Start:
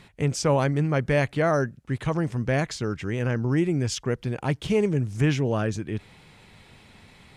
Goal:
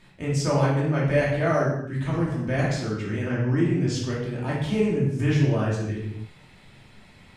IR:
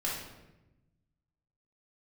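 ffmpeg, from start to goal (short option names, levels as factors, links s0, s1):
-filter_complex "[0:a]asettb=1/sr,asplit=3[s0][s1][s2];[s0]atrim=end=3.244[s3];[s1]atrim=start=3.24:end=3.95,asetpts=PTS-STARTPTS,afade=t=in:d=0.004:c=qsin,afade=t=out:st=0.706:d=0.004:c=qsin,lowpass=7900[s4];[s2]atrim=start=3.946[s5];[s3][s4]acrossfade=d=0.004:c1=hsin:c2=qsin[s6];[s6][s5]acrossfade=d=0.004:c1=qsin:c2=hsin[s7];[1:a]atrim=start_sample=2205,afade=t=out:st=0.36:d=0.01,atrim=end_sample=16317[s8];[s7][s8]afir=irnorm=-1:irlink=0,volume=0.531"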